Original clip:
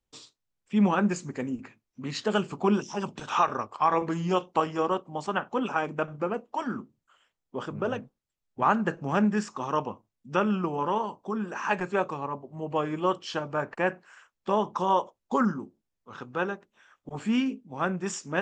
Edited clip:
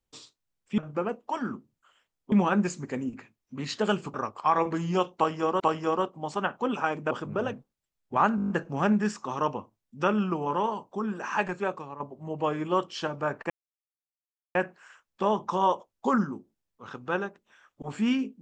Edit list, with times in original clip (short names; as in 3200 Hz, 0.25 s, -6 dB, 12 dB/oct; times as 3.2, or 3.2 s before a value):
2.6–3.5 cut
4.52–4.96 loop, 2 plays
6.03–7.57 move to 0.78
8.82 stutter 0.02 s, 8 plays
11.69–12.32 fade out, to -9.5 dB
13.82 insert silence 1.05 s